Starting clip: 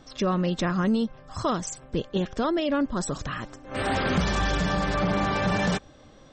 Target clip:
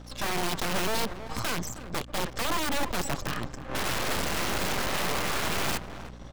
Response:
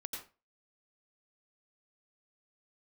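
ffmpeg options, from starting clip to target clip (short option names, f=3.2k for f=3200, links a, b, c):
-filter_complex "[0:a]acrossover=split=110|1100[a][b][c];[a]acompressor=threshold=-38dB:ratio=4[d];[b]acompressor=threshold=-27dB:ratio=4[e];[c]acompressor=threshold=-38dB:ratio=4[f];[d][e][f]amix=inputs=3:normalize=0,aeval=exprs='(mod(18.8*val(0)+1,2)-1)/18.8':c=same,asplit=2[g][h];[h]adelay=316,lowpass=f=930:p=1,volume=-9dB,asplit=2[i][j];[j]adelay=316,lowpass=f=930:p=1,volume=0.32,asplit=2[k][l];[l]adelay=316,lowpass=f=930:p=1,volume=0.32,asplit=2[m][n];[n]adelay=316,lowpass=f=930:p=1,volume=0.32[o];[g][i][k][m][o]amix=inputs=5:normalize=0,aeval=exprs='max(val(0),0)':c=same,aeval=exprs='val(0)+0.00316*(sin(2*PI*60*n/s)+sin(2*PI*2*60*n/s)/2+sin(2*PI*3*60*n/s)/3+sin(2*PI*4*60*n/s)/4+sin(2*PI*5*60*n/s)/5)':c=same,volume=5.5dB"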